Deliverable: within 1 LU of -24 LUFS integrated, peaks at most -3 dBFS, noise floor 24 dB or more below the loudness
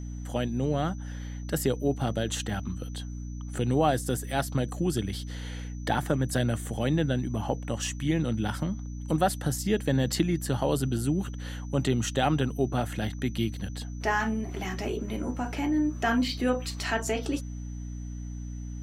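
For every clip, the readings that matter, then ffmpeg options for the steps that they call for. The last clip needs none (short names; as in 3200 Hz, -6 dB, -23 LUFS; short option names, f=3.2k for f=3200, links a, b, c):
hum 60 Hz; harmonics up to 300 Hz; hum level -34 dBFS; steady tone 6000 Hz; tone level -54 dBFS; loudness -29.5 LUFS; peak -10.5 dBFS; loudness target -24.0 LUFS
-> -af "bandreject=f=60:t=h:w=4,bandreject=f=120:t=h:w=4,bandreject=f=180:t=h:w=4,bandreject=f=240:t=h:w=4,bandreject=f=300:t=h:w=4"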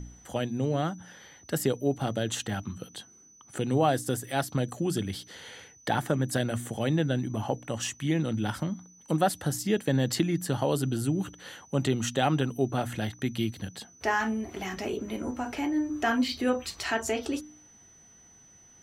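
hum none; steady tone 6000 Hz; tone level -54 dBFS
-> -af "bandreject=f=6k:w=30"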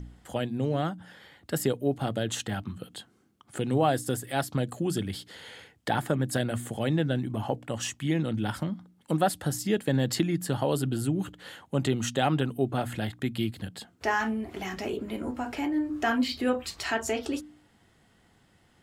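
steady tone none; loudness -29.5 LUFS; peak -11.0 dBFS; loudness target -24.0 LUFS
-> -af "volume=5.5dB"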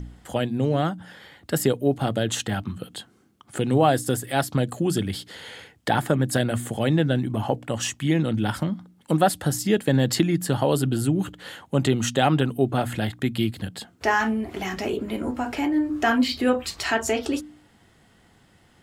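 loudness -24.0 LUFS; peak -5.5 dBFS; noise floor -58 dBFS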